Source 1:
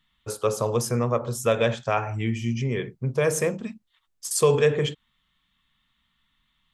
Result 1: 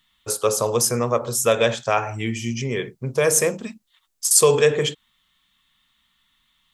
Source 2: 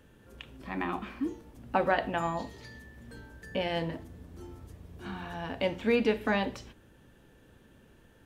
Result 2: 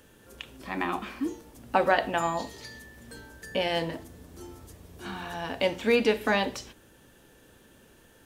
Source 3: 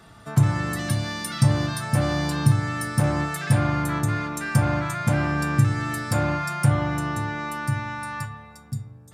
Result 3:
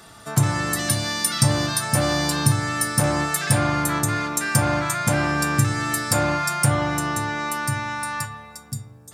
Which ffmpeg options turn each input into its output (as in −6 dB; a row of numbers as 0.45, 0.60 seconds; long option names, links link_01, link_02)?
-af "bass=frequency=250:gain=-6,treble=frequency=4000:gain=8,volume=4dB"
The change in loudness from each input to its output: +4.5, +3.5, +2.5 LU